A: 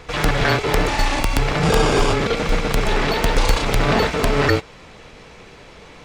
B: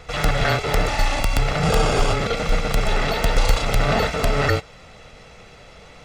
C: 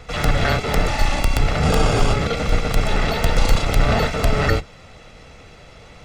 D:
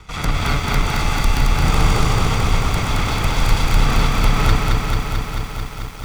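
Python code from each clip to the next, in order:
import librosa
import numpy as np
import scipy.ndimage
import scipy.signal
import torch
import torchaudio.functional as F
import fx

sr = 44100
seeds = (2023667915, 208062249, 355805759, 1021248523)

y1 = x + 0.45 * np.pad(x, (int(1.5 * sr / 1000.0), 0))[:len(x)]
y1 = F.gain(torch.from_numpy(y1), -3.0).numpy()
y2 = fx.octave_divider(y1, sr, octaves=1, level_db=1.0)
y3 = fx.lower_of_two(y2, sr, delay_ms=0.86)
y3 = fx.echo_crushed(y3, sr, ms=220, feedback_pct=80, bits=7, wet_db=-3)
y3 = F.gain(torch.from_numpy(y3), -1.0).numpy()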